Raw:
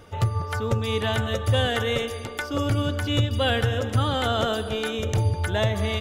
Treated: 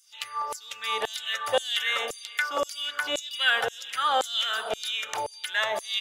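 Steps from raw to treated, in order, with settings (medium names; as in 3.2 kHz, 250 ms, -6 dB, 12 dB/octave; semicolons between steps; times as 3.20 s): LFO high-pass saw down 1.9 Hz 580–7600 Hz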